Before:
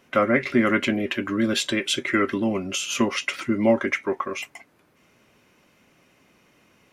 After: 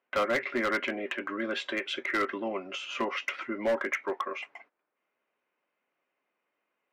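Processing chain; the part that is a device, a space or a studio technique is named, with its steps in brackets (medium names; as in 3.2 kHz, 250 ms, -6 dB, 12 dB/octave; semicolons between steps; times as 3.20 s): walkie-talkie (band-pass 500–2200 Hz; hard clipper -20.5 dBFS, distortion -11 dB; gate -53 dBFS, range -16 dB); trim -2 dB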